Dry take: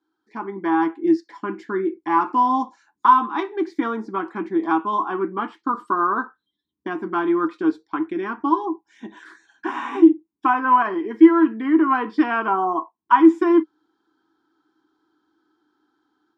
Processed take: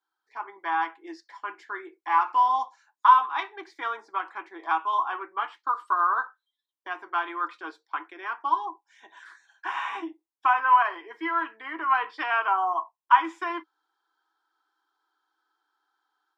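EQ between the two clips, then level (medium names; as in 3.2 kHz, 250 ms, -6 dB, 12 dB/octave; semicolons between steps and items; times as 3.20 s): high-pass 600 Hz 24 dB/octave; dynamic bell 2.7 kHz, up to +6 dB, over -39 dBFS, Q 1; -3.5 dB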